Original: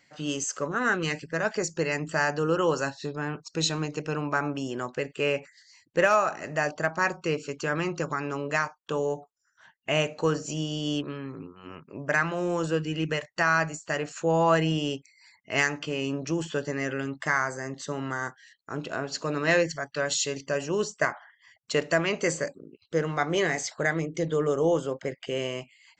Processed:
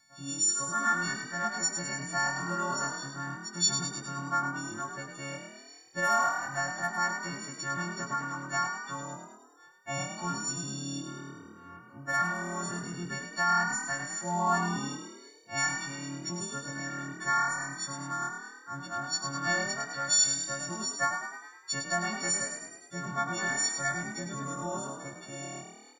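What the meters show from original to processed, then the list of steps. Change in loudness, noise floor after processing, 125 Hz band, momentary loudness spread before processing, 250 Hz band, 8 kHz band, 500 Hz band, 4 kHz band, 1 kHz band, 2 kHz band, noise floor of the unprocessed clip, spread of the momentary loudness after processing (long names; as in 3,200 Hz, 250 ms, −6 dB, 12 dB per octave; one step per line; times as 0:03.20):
−3.0 dB, −54 dBFS, −7.0 dB, 9 LU, −8.0 dB, +5.5 dB, −14.0 dB, −1.0 dB, −0.5 dB, −3.5 dB, −68 dBFS, 15 LU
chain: every partial snapped to a pitch grid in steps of 4 semitones
phaser with its sweep stopped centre 1,100 Hz, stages 4
echo with shifted repeats 103 ms, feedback 56%, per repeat +38 Hz, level −7 dB
level −4.5 dB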